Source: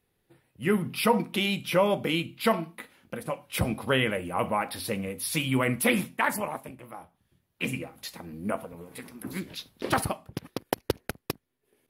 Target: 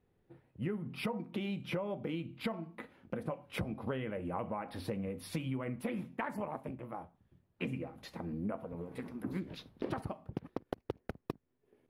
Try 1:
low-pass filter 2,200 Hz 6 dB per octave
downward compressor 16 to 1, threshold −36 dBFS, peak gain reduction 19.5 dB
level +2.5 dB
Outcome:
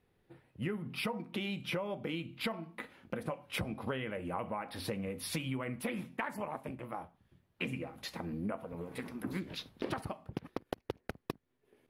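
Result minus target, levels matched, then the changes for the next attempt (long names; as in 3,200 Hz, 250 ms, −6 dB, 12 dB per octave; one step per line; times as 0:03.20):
2,000 Hz band +4.0 dB
change: low-pass filter 740 Hz 6 dB per octave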